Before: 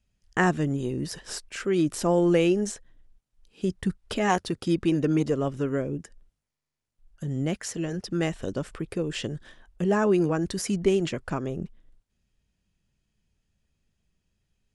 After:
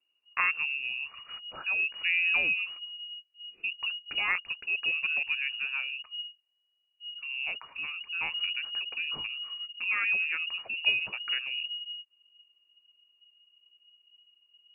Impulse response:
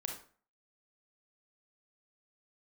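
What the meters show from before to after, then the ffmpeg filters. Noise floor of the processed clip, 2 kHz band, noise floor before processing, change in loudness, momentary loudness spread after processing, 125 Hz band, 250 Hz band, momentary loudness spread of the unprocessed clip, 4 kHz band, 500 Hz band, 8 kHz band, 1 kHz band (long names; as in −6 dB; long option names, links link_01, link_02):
−76 dBFS, +8.0 dB, −83 dBFS, −3.0 dB, 13 LU, below −30 dB, below −30 dB, 12 LU, +9.0 dB, −28.0 dB, below −40 dB, −9.5 dB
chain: -af "asubboost=boost=9:cutoff=54,lowpass=frequency=2500:width_type=q:width=0.5098,lowpass=frequency=2500:width_type=q:width=0.6013,lowpass=frequency=2500:width_type=q:width=0.9,lowpass=frequency=2500:width_type=q:width=2.563,afreqshift=-2900,volume=-5dB"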